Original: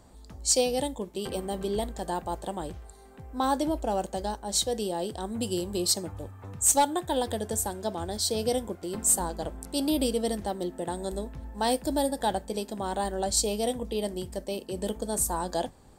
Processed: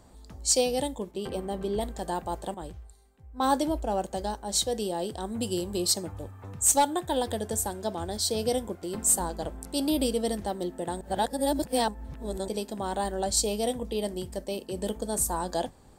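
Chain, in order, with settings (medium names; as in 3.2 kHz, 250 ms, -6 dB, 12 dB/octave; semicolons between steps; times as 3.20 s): 1.11–1.81 s: treble shelf 3.4 kHz -8 dB; 2.54–4.11 s: three bands expanded up and down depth 70%; 11.01–12.48 s: reverse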